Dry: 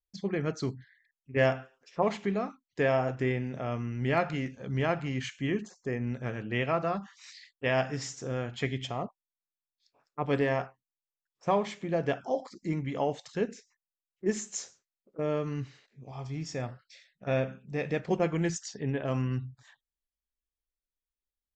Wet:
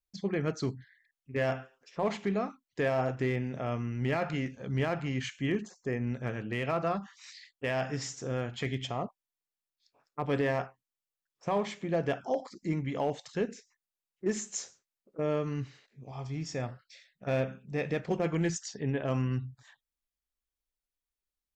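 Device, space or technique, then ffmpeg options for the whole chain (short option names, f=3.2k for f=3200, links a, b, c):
limiter into clipper: -af "alimiter=limit=-20dB:level=0:latency=1:release=21,asoftclip=type=hard:threshold=-21.5dB"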